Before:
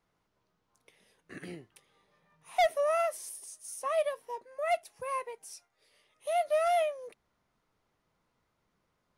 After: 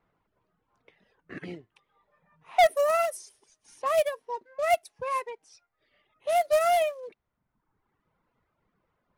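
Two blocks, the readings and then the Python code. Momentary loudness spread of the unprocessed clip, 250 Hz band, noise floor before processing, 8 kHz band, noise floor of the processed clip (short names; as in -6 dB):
20 LU, n/a, -78 dBFS, +1.5 dB, -80 dBFS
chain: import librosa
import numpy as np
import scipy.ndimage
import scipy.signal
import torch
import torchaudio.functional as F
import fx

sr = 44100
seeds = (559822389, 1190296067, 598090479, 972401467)

y = fx.quant_float(x, sr, bits=2)
y = fx.env_lowpass(y, sr, base_hz=2300.0, full_db=-27.0)
y = fx.dereverb_blind(y, sr, rt60_s=1.1)
y = y * librosa.db_to_amplitude(5.5)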